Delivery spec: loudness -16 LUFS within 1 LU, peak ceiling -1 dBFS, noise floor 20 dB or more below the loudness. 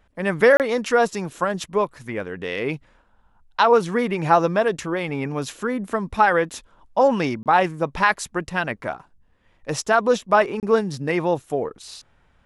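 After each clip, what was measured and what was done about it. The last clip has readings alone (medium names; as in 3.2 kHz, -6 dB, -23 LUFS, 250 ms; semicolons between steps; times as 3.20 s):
dropouts 3; longest dropout 28 ms; loudness -21.5 LUFS; peak level -3.0 dBFS; loudness target -16.0 LUFS
-> interpolate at 0.57/7.43/10.60 s, 28 ms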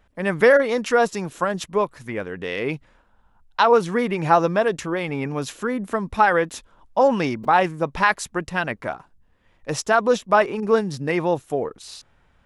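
dropouts 0; loudness -21.5 LUFS; peak level -3.0 dBFS; loudness target -16.0 LUFS
-> trim +5.5 dB; peak limiter -1 dBFS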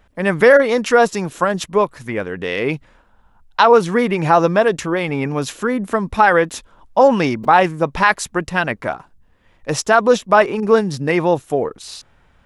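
loudness -16.5 LUFS; peak level -1.0 dBFS; noise floor -55 dBFS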